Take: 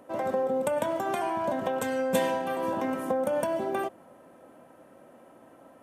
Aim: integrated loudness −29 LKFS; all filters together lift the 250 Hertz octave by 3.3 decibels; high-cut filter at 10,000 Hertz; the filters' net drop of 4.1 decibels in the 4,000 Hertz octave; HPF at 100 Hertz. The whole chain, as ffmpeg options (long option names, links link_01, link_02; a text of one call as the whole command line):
ffmpeg -i in.wav -af "highpass=100,lowpass=10000,equalizer=frequency=250:width_type=o:gain=4,equalizer=frequency=4000:width_type=o:gain=-5.5,volume=-1dB" out.wav